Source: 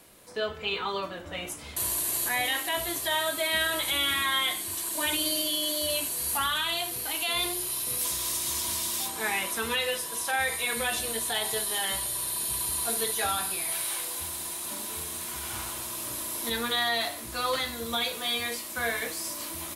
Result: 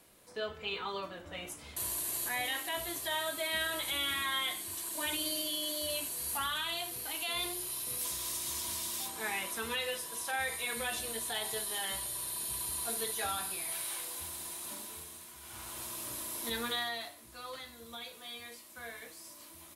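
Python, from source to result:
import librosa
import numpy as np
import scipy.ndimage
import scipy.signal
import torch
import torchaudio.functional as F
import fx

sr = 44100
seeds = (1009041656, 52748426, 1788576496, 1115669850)

y = fx.gain(x, sr, db=fx.line((14.71, -7.0), (15.36, -16.0), (15.82, -6.0), (16.7, -6.0), (17.16, -16.0)))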